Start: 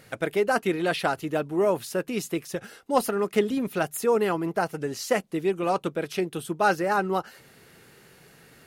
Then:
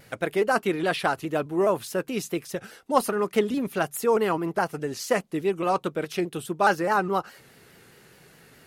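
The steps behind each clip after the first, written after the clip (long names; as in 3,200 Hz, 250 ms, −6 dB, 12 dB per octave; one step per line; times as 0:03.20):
dynamic equaliser 1,100 Hz, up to +4 dB, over −39 dBFS, Q 2.9
pitch modulation by a square or saw wave saw down 4.8 Hz, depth 100 cents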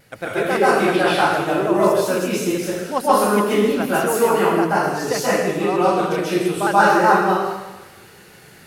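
dense smooth reverb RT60 1.1 s, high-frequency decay 1×, pre-delay 120 ms, DRR −9.5 dB
level −1.5 dB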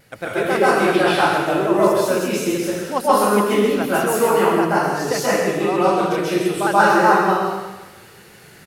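single-tap delay 132 ms −8.5 dB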